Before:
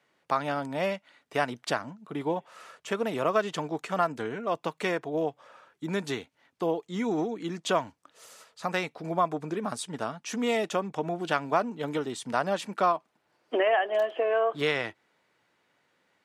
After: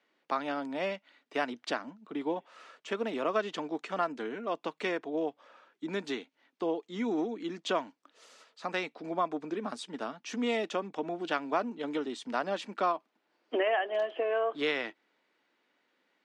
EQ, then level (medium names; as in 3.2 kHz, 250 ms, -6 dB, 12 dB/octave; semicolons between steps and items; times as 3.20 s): ladder high-pass 210 Hz, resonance 40%; low-pass 3.9 kHz 12 dB/octave; treble shelf 3 kHz +10 dB; +2.0 dB